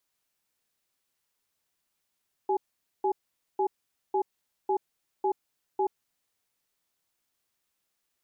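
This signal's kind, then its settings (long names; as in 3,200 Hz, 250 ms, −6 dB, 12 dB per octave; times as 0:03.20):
tone pair in a cadence 386 Hz, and 839 Hz, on 0.08 s, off 0.47 s, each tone −25.5 dBFS 3.39 s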